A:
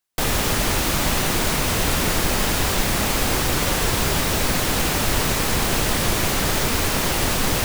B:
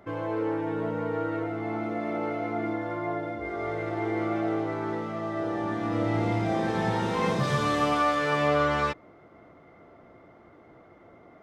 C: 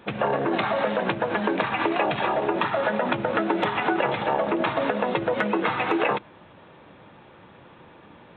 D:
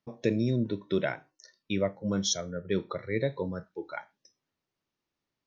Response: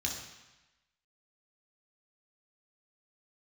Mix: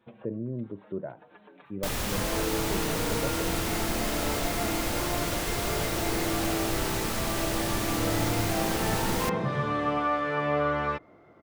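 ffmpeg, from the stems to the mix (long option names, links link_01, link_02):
-filter_complex "[0:a]adelay=1650,volume=-10dB[link_01];[1:a]acrossover=split=3000[link_02][link_03];[link_03]acompressor=threshold=-57dB:ratio=4:attack=1:release=60[link_04];[link_02][link_04]amix=inputs=2:normalize=0,adelay=2050,volume=-2.5dB[link_05];[2:a]acompressor=threshold=-38dB:ratio=2.5,asplit=2[link_06][link_07];[link_07]adelay=5.7,afreqshift=-0.36[link_08];[link_06][link_08]amix=inputs=2:normalize=1,volume=-15dB[link_09];[3:a]lowpass=frequency=1100:width=0.5412,lowpass=frequency=1100:width=1.3066,volume=-6.5dB,asplit=2[link_10][link_11];[link_11]apad=whole_len=369221[link_12];[link_09][link_12]sidechaincompress=threshold=-43dB:ratio=8:attack=5.7:release=153[link_13];[link_01][link_05][link_13][link_10]amix=inputs=4:normalize=0"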